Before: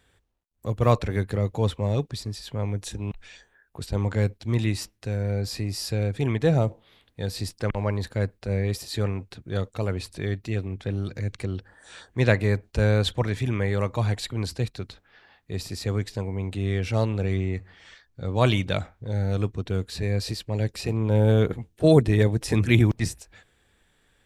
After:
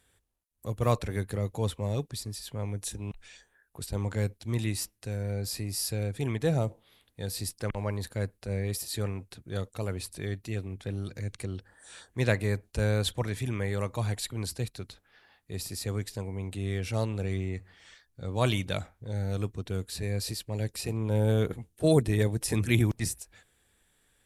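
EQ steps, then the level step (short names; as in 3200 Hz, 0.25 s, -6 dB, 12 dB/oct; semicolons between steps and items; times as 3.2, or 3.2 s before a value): bell 11000 Hz +13.5 dB 1.1 oct; -6.0 dB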